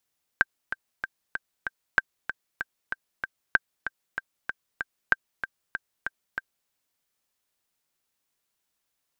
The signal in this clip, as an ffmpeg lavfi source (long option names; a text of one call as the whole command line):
ffmpeg -f lavfi -i "aevalsrc='pow(10,(-5-11*gte(mod(t,5*60/191),60/191))/20)*sin(2*PI*1570*mod(t,60/191))*exp(-6.91*mod(t,60/191)/0.03)':duration=6.28:sample_rate=44100" out.wav